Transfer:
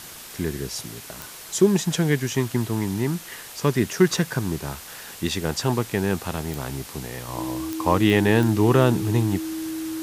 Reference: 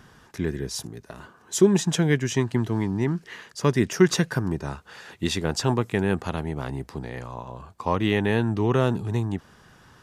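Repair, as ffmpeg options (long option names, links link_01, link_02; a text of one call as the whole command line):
ffmpeg -i in.wav -af "adeclick=threshold=4,bandreject=frequency=320:width=30,afwtdn=0.011,asetnsamples=nb_out_samples=441:pad=0,asendcmd='7.28 volume volume -4dB',volume=0dB" out.wav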